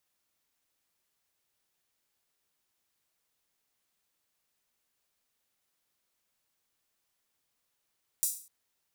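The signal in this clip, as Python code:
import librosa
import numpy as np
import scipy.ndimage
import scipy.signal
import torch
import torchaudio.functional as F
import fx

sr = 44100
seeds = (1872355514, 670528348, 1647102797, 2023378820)

y = fx.drum_hat_open(sr, length_s=0.25, from_hz=7700.0, decay_s=0.43)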